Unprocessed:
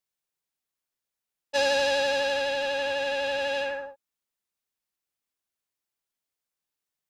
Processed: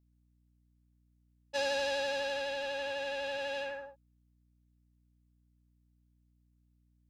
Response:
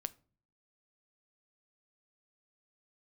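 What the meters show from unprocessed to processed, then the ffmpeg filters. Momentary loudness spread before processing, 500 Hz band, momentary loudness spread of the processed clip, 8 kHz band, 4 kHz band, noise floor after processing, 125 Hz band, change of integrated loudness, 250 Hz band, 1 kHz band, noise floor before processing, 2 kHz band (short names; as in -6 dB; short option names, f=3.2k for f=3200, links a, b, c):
8 LU, -8.5 dB, 8 LU, -8.5 dB, -8.5 dB, -71 dBFS, n/a, -8.5 dB, -8.5 dB, -8.5 dB, under -85 dBFS, -8.5 dB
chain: -af "aeval=exprs='val(0)+0.001*(sin(2*PI*60*n/s)+sin(2*PI*2*60*n/s)/2+sin(2*PI*3*60*n/s)/3+sin(2*PI*4*60*n/s)/4+sin(2*PI*5*60*n/s)/5)':c=same,volume=-8.5dB"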